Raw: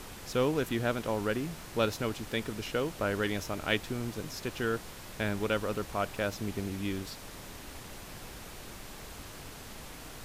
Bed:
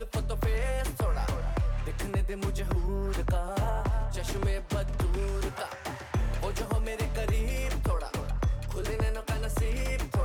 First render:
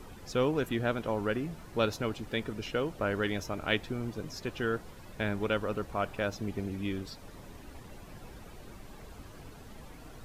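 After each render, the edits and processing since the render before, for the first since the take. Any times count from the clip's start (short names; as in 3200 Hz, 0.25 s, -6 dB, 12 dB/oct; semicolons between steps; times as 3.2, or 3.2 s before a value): denoiser 11 dB, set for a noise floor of -46 dBFS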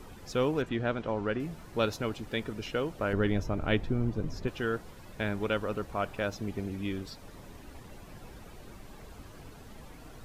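0.62–1.4 air absorption 95 m; 3.13–4.48 tilt -2.5 dB/oct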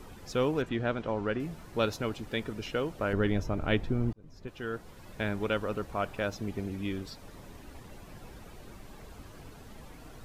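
4.13–5.1 fade in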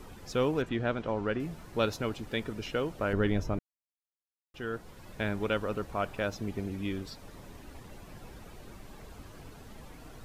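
3.59–4.54 mute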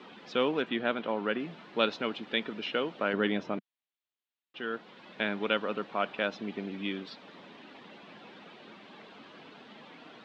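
Chebyshev band-pass 200–3500 Hz, order 3; high shelf 2000 Hz +10 dB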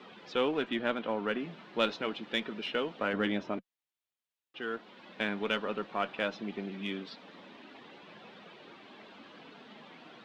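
flange 0.24 Hz, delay 1.5 ms, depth 4.8 ms, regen -63%; in parallel at -7.5 dB: one-sided clip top -37 dBFS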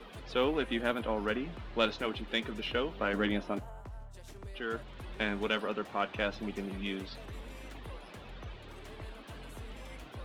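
add bed -17.5 dB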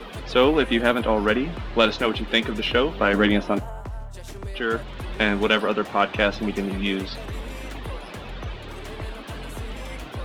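gain +12 dB; limiter -3 dBFS, peak gain reduction 2.5 dB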